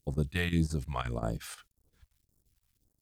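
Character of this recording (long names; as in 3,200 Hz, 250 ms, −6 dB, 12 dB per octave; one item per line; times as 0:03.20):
a quantiser's noise floor 12 bits, dither none
phaser sweep stages 2, 1.8 Hz, lowest notch 280–2,600 Hz
chopped level 5.7 Hz, depth 65%, duty 80%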